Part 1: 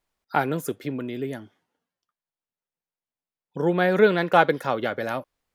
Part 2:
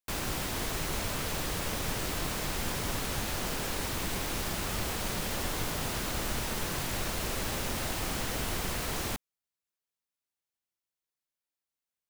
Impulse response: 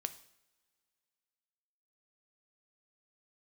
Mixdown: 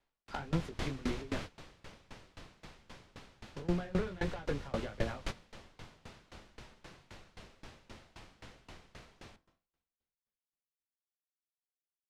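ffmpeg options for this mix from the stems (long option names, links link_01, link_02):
-filter_complex "[0:a]acontrast=88,flanger=delay=17.5:depth=5:speed=1.6,asoftclip=type=hard:threshold=-15.5dB,volume=-1.5dB,asplit=2[link_01][link_02];[1:a]bandreject=frequency=47.41:width_type=h:width=4,bandreject=frequency=94.82:width_type=h:width=4,bandreject=frequency=142.23:width_type=h:width=4,bandreject=frequency=189.64:width_type=h:width=4,bandreject=frequency=237.05:width_type=h:width=4,bandreject=frequency=284.46:width_type=h:width=4,bandreject=frequency=331.87:width_type=h:width=4,bandreject=frequency=379.28:width_type=h:width=4,bandreject=frequency=426.69:width_type=h:width=4,bandreject=frequency=474.1:width_type=h:width=4,bandreject=frequency=521.51:width_type=h:width=4,bandreject=frequency=568.92:width_type=h:width=4,bandreject=frequency=616.33:width_type=h:width=4,bandreject=frequency=663.74:width_type=h:width=4,bandreject=frequency=711.15:width_type=h:width=4,bandreject=frequency=758.56:width_type=h:width=4,bandreject=frequency=805.97:width_type=h:width=4,bandreject=frequency=853.38:width_type=h:width=4,bandreject=frequency=900.79:width_type=h:width=4,bandreject=frequency=948.2:width_type=h:width=4,bandreject=frequency=995.61:width_type=h:width=4,bandreject=frequency=1043.02:width_type=h:width=4,bandreject=frequency=1090.43:width_type=h:width=4,bandreject=frequency=1137.84:width_type=h:width=4,bandreject=frequency=1185.25:width_type=h:width=4,bandreject=frequency=1232.66:width_type=h:width=4,bandreject=frequency=1280.07:width_type=h:width=4,bandreject=frequency=1327.48:width_type=h:width=4,bandreject=frequency=1374.89:width_type=h:width=4,bandreject=frequency=1422.3:width_type=h:width=4,bandreject=frequency=1469.71:width_type=h:width=4,bandreject=frequency=1517.12:width_type=h:width=4,bandreject=frequency=1564.53:width_type=h:width=4,bandreject=frequency=1611.94:width_type=h:width=4,bandreject=frequency=1659.35:width_type=h:width=4,bandreject=frequency=1706.76:width_type=h:width=4,bandreject=frequency=1754.17:width_type=h:width=4,bandreject=frequency=1801.58:width_type=h:width=4,bandreject=frequency=1848.99:width_type=h:width=4,adelay=200,volume=2dB,asplit=2[link_03][link_04];[link_04]volume=-15dB[link_05];[link_02]apad=whole_len=542136[link_06];[link_03][link_06]sidechaingate=range=-33dB:threshold=-38dB:ratio=16:detection=peak[link_07];[2:a]atrim=start_sample=2205[link_08];[link_05][link_08]afir=irnorm=-1:irlink=0[link_09];[link_01][link_07][link_09]amix=inputs=3:normalize=0,lowpass=4700,acrossover=split=170[link_10][link_11];[link_11]acompressor=threshold=-29dB:ratio=10[link_12];[link_10][link_12]amix=inputs=2:normalize=0,aeval=exprs='val(0)*pow(10,-23*if(lt(mod(3.8*n/s,1),2*abs(3.8)/1000),1-mod(3.8*n/s,1)/(2*abs(3.8)/1000),(mod(3.8*n/s,1)-2*abs(3.8)/1000)/(1-2*abs(3.8)/1000))/20)':channel_layout=same"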